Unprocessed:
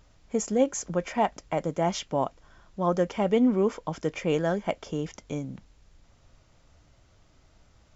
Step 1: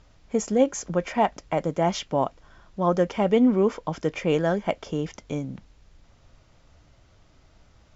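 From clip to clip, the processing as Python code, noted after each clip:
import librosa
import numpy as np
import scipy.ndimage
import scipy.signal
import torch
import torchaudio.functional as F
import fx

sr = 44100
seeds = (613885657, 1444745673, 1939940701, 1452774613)

y = scipy.signal.sosfilt(scipy.signal.butter(2, 6500.0, 'lowpass', fs=sr, output='sos'), x)
y = y * 10.0 ** (3.0 / 20.0)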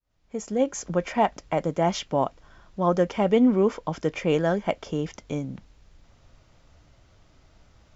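y = fx.fade_in_head(x, sr, length_s=0.89)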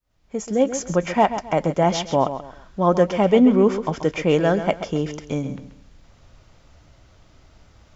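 y = fx.echo_feedback(x, sr, ms=133, feedback_pct=29, wet_db=-11)
y = y * 10.0 ** (4.5 / 20.0)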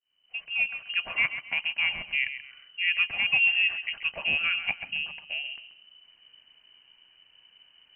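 y = fx.freq_invert(x, sr, carrier_hz=3000)
y = y * 10.0 ** (-9.0 / 20.0)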